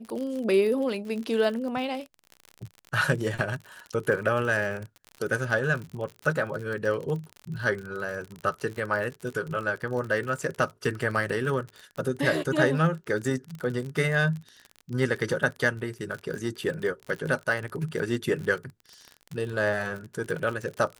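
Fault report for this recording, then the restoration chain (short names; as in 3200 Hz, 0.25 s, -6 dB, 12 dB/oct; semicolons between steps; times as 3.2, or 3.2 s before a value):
crackle 46/s -32 dBFS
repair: de-click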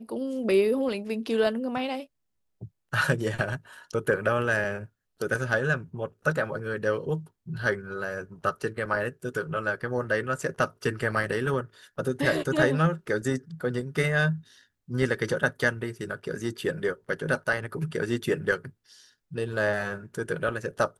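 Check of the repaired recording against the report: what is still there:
none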